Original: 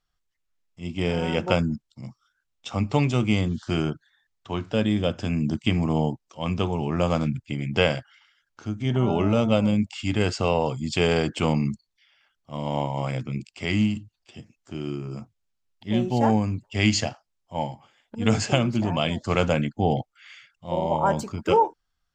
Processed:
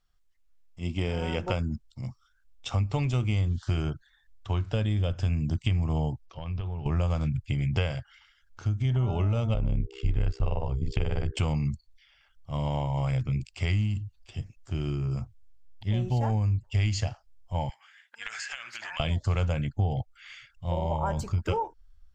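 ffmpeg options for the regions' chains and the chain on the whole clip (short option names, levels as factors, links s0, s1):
-filter_complex "[0:a]asettb=1/sr,asplit=3[s0][s1][s2];[s0]atrim=end=6.264[s3];[s1]atrim=start=6.26:end=6.86,asetpts=PTS-STARTPTS,afade=t=in:d=0.004:c=qsin,afade=t=out:st=0.596:d=0.004:c=qsin,lowpass=f=4600:w=0.5412,lowpass=f=4600:w=1.3066,acompressor=threshold=0.0178:ratio=20:attack=3.2:release=140:knee=1:detection=peak[s4];[s2]atrim=start=6.856[s5];[s3][s4]acrossfade=d=0.004:c1=hsin:c2=qsin[s6];[s6][s5]acrossfade=d=0.004:c1=qsin:c2=hsin,asettb=1/sr,asplit=3[s7][s8][s9];[s7]atrim=end=9.544[s10];[s8]atrim=start=9.54:end=11.37,asetpts=PTS-STARTPTS,afade=t=in:d=0.004:c=qsin,afade=t=out:st=1.826:d=0.004:c=qsin,lowpass=f=1800:p=1,aeval=exprs='val(0)+0.0158*sin(2*PI*400*n/s)':c=same,tremolo=f=65:d=0.947[s11];[s9]atrim=start=11.366[s12];[s10][s11]acrossfade=d=0.004:c1=hsin:c2=qsin[s13];[s13][s12]acrossfade=d=0.004:c1=qsin:c2=hsin,asettb=1/sr,asplit=3[s14][s15][s16];[s14]atrim=end=17.694[s17];[s15]atrim=start=17.69:end=19,asetpts=PTS-STARTPTS,afade=t=in:d=0.004:c=qsin,afade=t=out:st=1.306:d=0.004:c=qsin,highpass=f=1700:t=q:w=4,acompressor=threshold=0.0224:ratio=10:attack=3.2:release=140:knee=1:detection=peak[s18];[s16]atrim=start=18.996[s19];[s17][s18]acrossfade=d=0.004:c1=hsin:c2=qsin[s20];[s20][s19]acrossfade=d=0.004:c1=qsin:c2=hsin,asubboost=boost=11:cutoff=71,acompressor=threshold=0.0447:ratio=4,lowshelf=f=100:g=6"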